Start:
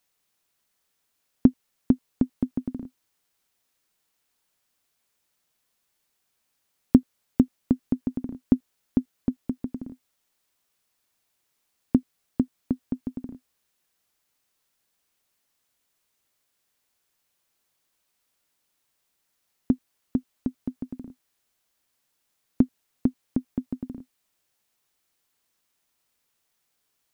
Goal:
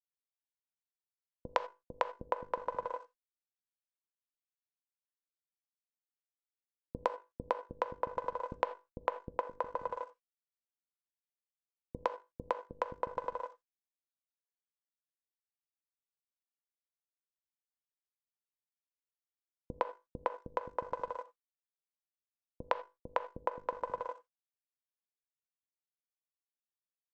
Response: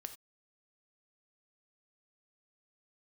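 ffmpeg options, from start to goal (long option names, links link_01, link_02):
-filter_complex "[0:a]highpass=frequency=48:poles=1,equalizer=frequency=330:width_type=o:width=0.29:gain=-4.5,bandreject=frequency=50:width_type=h:width=6,bandreject=frequency=100:width_type=h:width=6,bandreject=frequency=150:width_type=h:width=6,bandreject=frequency=200:width_type=h:width=6,bandreject=frequency=250:width_type=h:width=6,bandreject=frequency=300:width_type=h:width=6,bandreject=frequency=350:width_type=h:width=6,bandreject=frequency=400:width_type=h:width=6,bandreject=frequency=450:width_type=h:width=6,bandreject=frequency=500:width_type=h:width=6,acompressor=threshold=-36dB:ratio=6,aresample=16000,aeval=exprs='sgn(val(0))*max(abs(val(0))-0.00251,0)':channel_layout=same,aresample=44100,aeval=exprs='val(0)*sin(2*PI*750*n/s)':channel_layout=same,acrossover=split=330[link_01][link_02];[link_02]adelay=110[link_03];[link_01][link_03]amix=inputs=2:normalize=0,asplit=2[link_04][link_05];[1:a]atrim=start_sample=2205[link_06];[link_05][link_06]afir=irnorm=-1:irlink=0,volume=4dB[link_07];[link_04][link_07]amix=inputs=2:normalize=0,volume=3dB" -ar 48000 -c:a libopus -b:a 64k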